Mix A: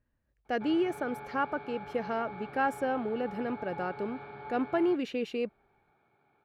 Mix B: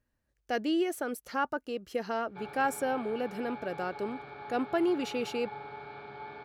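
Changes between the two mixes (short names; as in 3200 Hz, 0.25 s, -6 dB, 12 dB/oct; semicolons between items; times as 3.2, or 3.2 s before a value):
background: entry +1.75 s; master: add tone controls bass -3 dB, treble +12 dB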